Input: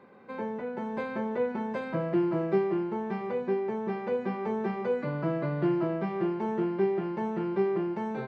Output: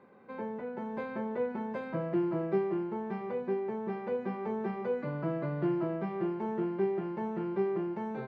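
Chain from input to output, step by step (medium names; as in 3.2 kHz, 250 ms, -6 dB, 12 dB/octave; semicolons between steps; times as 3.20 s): treble shelf 3.6 kHz -8 dB; trim -3.5 dB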